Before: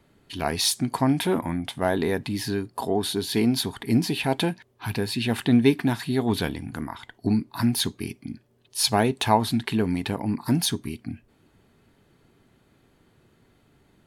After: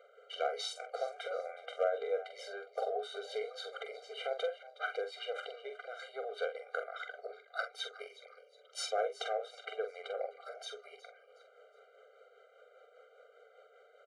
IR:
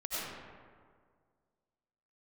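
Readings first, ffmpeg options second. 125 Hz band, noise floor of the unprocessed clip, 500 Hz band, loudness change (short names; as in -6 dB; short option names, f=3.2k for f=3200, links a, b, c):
under -40 dB, -63 dBFS, -8.5 dB, -14.5 dB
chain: -filter_complex "[0:a]highshelf=f=2.5k:g=-11.5,acompressor=threshold=-34dB:ratio=10,tremolo=f=5:d=0.45,volume=26.5dB,asoftclip=hard,volume=-26.5dB,highpass=f=430:w=0.5412,highpass=f=430:w=1.3066,equalizer=f=510:t=q:w=4:g=9,equalizer=f=1.4k:t=q:w=4:g=5,equalizer=f=4.9k:t=q:w=4:g=-8,lowpass=f=7.3k:w=0.5412,lowpass=f=7.3k:w=1.3066,asplit=2[a][b];[b]adelay=45,volume=-7.5dB[c];[a][c]amix=inputs=2:normalize=0,asplit=4[d][e][f][g];[e]adelay=366,afreqshift=110,volume=-17.5dB[h];[f]adelay=732,afreqshift=220,volume=-26.4dB[i];[g]adelay=1098,afreqshift=330,volume=-35.2dB[j];[d][h][i][j]amix=inputs=4:normalize=0,afftfilt=real='re*eq(mod(floor(b*sr/1024/400),2),1)':imag='im*eq(mod(floor(b*sr/1024/400),2),1)':win_size=1024:overlap=0.75,volume=7.5dB"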